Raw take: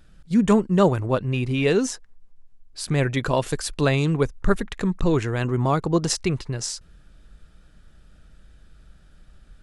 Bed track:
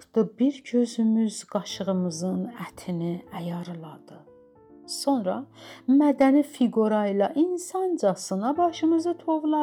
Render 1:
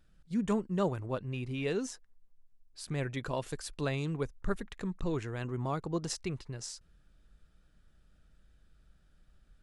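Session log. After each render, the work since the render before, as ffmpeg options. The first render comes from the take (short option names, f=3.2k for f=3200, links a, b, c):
-af "volume=-13dB"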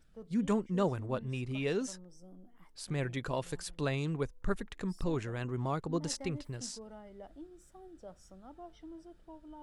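-filter_complex "[1:a]volume=-27dB[a];[0:a][a]amix=inputs=2:normalize=0"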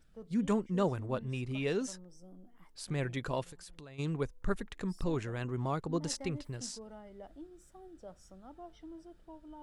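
-filter_complex "[0:a]asplit=3[a][b][c];[a]afade=t=out:st=3.43:d=0.02[d];[b]acompressor=threshold=-46dB:ratio=16:attack=3.2:release=140:knee=1:detection=peak,afade=t=in:st=3.43:d=0.02,afade=t=out:st=3.98:d=0.02[e];[c]afade=t=in:st=3.98:d=0.02[f];[d][e][f]amix=inputs=3:normalize=0"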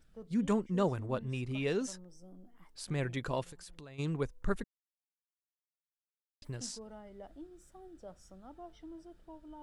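-filter_complex "[0:a]asplit=3[a][b][c];[a]atrim=end=4.64,asetpts=PTS-STARTPTS,afade=t=out:st=4.636:d=0.004:c=hsin[d];[b]atrim=start=4.64:end=6.42,asetpts=PTS-STARTPTS,volume=0[e];[c]atrim=start=6.42,asetpts=PTS-STARTPTS,afade=t=in:d=0.004:c=hsin[f];[d][e][f]concat=n=3:v=0:a=1"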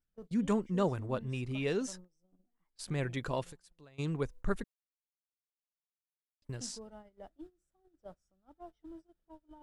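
-af "agate=range=-22dB:threshold=-48dB:ratio=16:detection=peak"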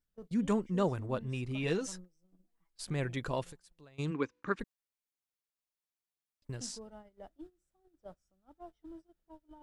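-filter_complex "[0:a]asettb=1/sr,asplit=3[a][b][c];[a]atrim=end=1.634[d];[b]atrim=start=1.63:end=2.85,asetpts=PTS-STARTPTS,afade=t=in:d=0.004:c=qsin,afade=t=out:st=1.216:d=0.004:c=qsin,aecho=1:1:6.1:0.58,atrim=end_sample=53802[e];[c]atrim=start=2.846[f];[d][e]acrossfade=d=0.004:c1=hsin:c2=qsin[g];[g][f]acrossfade=d=0.004:c1=qsin:c2=hsin,asplit=3[h][i][j];[h]afade=t=out:st=4.1:d=0.02[k];[i]highpass=220,equalizer=f=290:t=q:w=4:g=8,equalizer=f=670:t=q:w=4:g=-9,equalizer=f=1.1k:t=q:w=4:g=6,equalizer=f=1.6k:t=q:w=4:g=5,equalizer=f=2.4k:t=q:w=4:g=8,lowpass=f=6.1k:w=0.5412,lowpass=f=6.1k:w=1.3066,afade=t=in:st=4.1:d=0.02,afade=t=out:st=4.59:d=0.02[l];[j]afade=t=in:st=4.59:d=0.02[m];[k][l][m]amix=inputs=3:normalize=0"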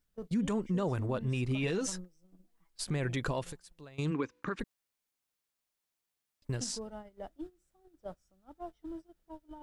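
-af "acontrast=61,alimiter=limit=-24dB:level=0:latency=1:release=78"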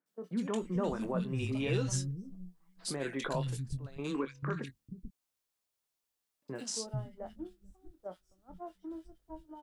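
-filter_complex "[0:a]asplit=2[a][b];[b]adelay=22,volume=-10dB[c];[a][c]amix=inputs=2:normalize=0,acrossover=split=190|2000[d][e][f];[f]adelay=60[g];[d]adelay=440[h];[h][e][g]amix=inputs=3:normalize=0"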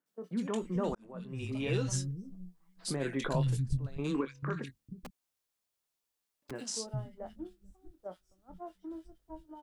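-filter_complex "[0:a]asettb=1/sr,asplit=3[a][b][c];[a]atrim=end=2.874[d];[b]atrim=start=2.87:end=4.21,asetpts=PTS-STARTPTS,afade=t=in:d=0.004:c=qsin,afade=t=out:st=1.336:d=0.004:c=qsin,lowshelf=f=220:g=8.5[e];[c]atrim=start=4.206[f];[d][e]acrossfade=d=0.004:c1=hsin:c2=qsin[g];[g][f]acrossfade=d=0.004:c1=qsin:c2=hsin,asettb=1/sr,asplit=3[h][i][j];[h]atrim=end=5.024[k];[i]atrim=start=5.02:end=6.51,asetpts=PTS-STARTPTS,afade=t=in:d=0.004:c=qsin,afade=t=out:st=1.486:d=0.004:c=qsin,aeval=exprs='(mod(84.1*val(0)+1,2)-1)/84.1':c=same[l];[j]atrim=start=6.506[m];[k][l]acrossfade=d=0.004:c1=hsin:c2=qsin[n];[n][m]acrossfade=d=0.004:c1=qsin:c2=hsin,asplit=2[o][p];[o]atrim=end=0.95,asetpts=PTS-STARTPTS,afade=t=out:st=0.946:d=0.004:c=hsin[q];[p]atrim=start=0.95,asetpts=PTS-STARTPTS,afade=t=in:d=0.77[r];[q][r]concat=n=2:v=0:a=1"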